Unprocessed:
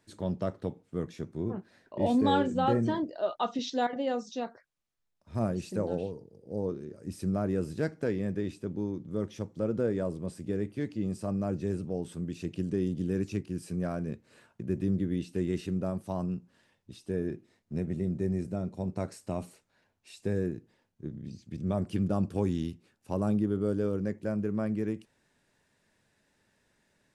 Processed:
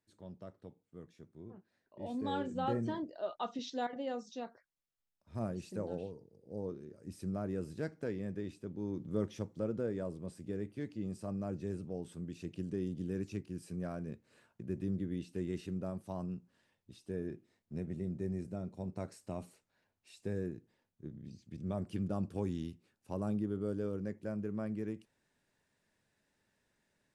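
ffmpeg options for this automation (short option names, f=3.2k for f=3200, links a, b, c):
-af "volume=-1dB,afade=t=in:st=1.96:d=0.69:silence=0.334965,afade=t=in:st=8.79:d=0.26:silence=0.446684,afade=t=out:st=9.05:d=0.76:silence=0.473151"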